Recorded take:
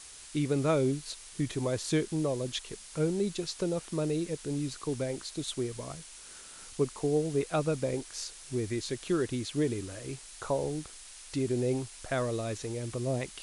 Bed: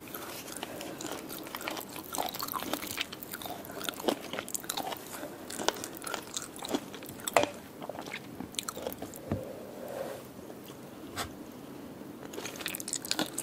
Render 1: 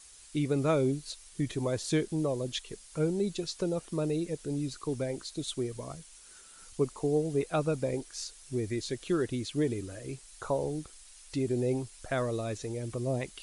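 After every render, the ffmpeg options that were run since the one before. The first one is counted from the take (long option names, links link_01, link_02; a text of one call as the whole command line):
ffmpeg -i in.wav -af "afftdn=noise_reduction=8:noise_floor=-49" out.wav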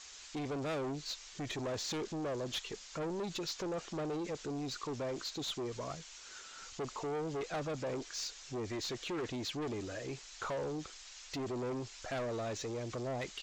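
ffmpeg -i in.wav -filter_complex "[0:a]aresample=16000,asoftclip=type=tanh:threshold=-34.5dB,aresample=44100,asplit=2[link_01][link_02];[link_02]highpass=frequency=720:poles=1,volume=13dB,asoftclip=type=tanh:threshold=-30.5dB[link_03];[link_01][link_03]amix=inputs=2:normalize=0,lowpass=frequency=5200:poles=1,volume=-6dB" out.wav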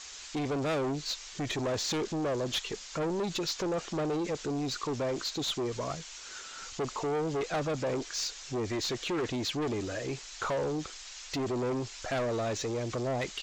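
ffmpeg -i in.wav -af "volume=6.5dB" out.wav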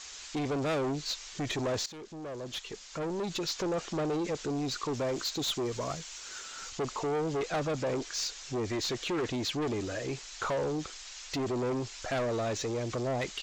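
ffmpeg -i in.wav -filter_complex "[0:a]asettb=1/sr,asplit=3[link_01][link_02][link_03];[link_01]atrim=end=4.944[link_04];[link_02]atrim=start=4.94:end=6.7,asetpts=PTS-STARTPTS,afade=type=in:duration=0.004:curve=qsin,afade=type=out:start_time=1.756:duration=0.004:curve=qsin,highshelf=frequency=12000:gain=11[link_05];[link_03]atrim=start=6.696[link_06];[link_04][link_05]acrossfade=duration=0.004:curve1=hsin:curve2=qsin[link_07];[link_07][link_06]acrossfade=duration=0.004:curve1=qsin:curve2=hsin,asplit=2[link_08][link_09];[link_08]atrim=end=1.86,asetpts=PTS-STARTPTS,afade=type=out:start_time=1.856:duration=0.004:curve=hsin:silence=0.149624[link_10];[link_09]atrim=start=1.86,asetpts=PTS-STARTPTS,afade=type=in:duration=1.78:silence=0.149624[link_11];[link_10][link_11]concat=n=2:v=0:a=1" out.wav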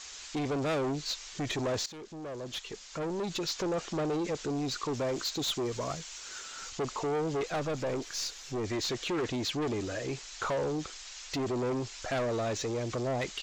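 ffmpeg -i in.wav -filter_complex "[0:a]asettb=1/sr,asplit=3[link_01][link_02][link_03];[link_01]atrim=end=7.474[link_04];[link_02]atrim=start=7.47:end=8.64,asetpts=PTS-STARTPTS,afade=type=in:duration=0.004:curve=qsin,afade=type=out:start_time=1.166:duration=0.004:curve=qsin,aeval=exprs='if(lt(val(0),0),0.708*val(0),val(0))':channel_layout=same[link_05];[link_03]atrim=start=8.636[link_06];[link_04][link_05]acrossfade=duration=0.004:curve1=hsin:curve2=qsin[link_07];[link_07][link_06]acrossfade=duration=0.004:curve1=qsin:curve2=hsin" out.wav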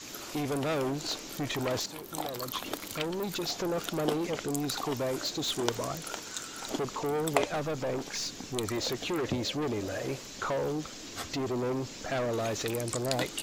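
ffmpeg -i in.wav -i bed.wav -filter_complex "[1:a]volume=-3dB[link_01];[0:a][link_01]amix=inputs=2:normalize=0" out.wav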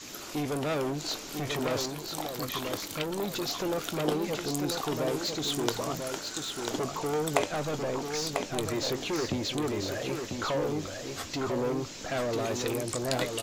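ffmpeg -i in.wav -filter_complex "[0:a]asplit=2[link_01][link_02];[link_02]adelay=20,volume=-13dB[link_03];[link_01][link_03]amix=inputs=2:normalize=0,aecho=1:1:994:0.531" out.wav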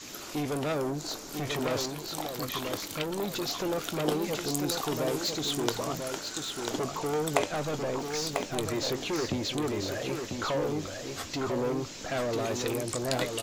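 ffmpeg -i in.wav -filter_complex "[0:a]asettb=1/sr,asplit=3[link_01][link_02][link_03];[link_01]atrim=end=0.724[link_04];[link_02]atrim=start=0.72:end=1.34,asetpts=PTS-STARTPTS,afade=type=in:duration=0.004:curve=qsin,afade=type=out:start_time=0.616:duration=0.004:curve=qsin,equalizer=frequency=2800:width=1.2:gain=-7.5[link_05];[link_03]atrim=start=1.336[link_06];[link_04][link_05]acrossfade=duration=0.004:curve1=hsin:curve2=qsin[link_07];[link_07][link_06]acrossfade=duration=0.004:curve1=qsin:curve2=hsin,asettb=1/sr,asplit=3[link_08][link_09][link_10];[link_08]atrim=end=4.064[link_11];[link_09]atrim=start=4.06:end=5.42,asetpts=PTS-STARTPTS,afade=type=in:duration=0.004:curve=qsin,afade=type=out:start_time=1.356:duration=0.004:curve=qsin,highshelf=frequency=6000:gain=4.5[link_12];[link_10]atrim=start=5.416[link_13];[link_11][link_12]acrossfade=duration=0.004:curve1=hsin:curve2=qsin[link_14];[link_14][link_13]acrossfade=duration=0.004:curve1=qsin:curve2=hsin,asettb=1/sr,asplit=3[link_15][link_16][link_17];[link_15]atrim=end=8.004[link_18];[link_16]atrim=start=8:end=8.55,asetpts=PTS-STARTPTS,afade=type=in:duration=0.004:curve=qsin,afade=type=out:start_time=0.546:duration=0.004:curve=qsin,acrusher=bits=6:mode=log:mix=0:aa=0.000001[link_19];[link_17]atrim=start=8.546[link_20];[link_18][link_19]acrossfade=duration=0.004:curve1=hsin:curve2=qsin[link_21];[link_21][link_20]acrossfade=duration=0.004:curve1=qsin:curve2=hsin" out.wav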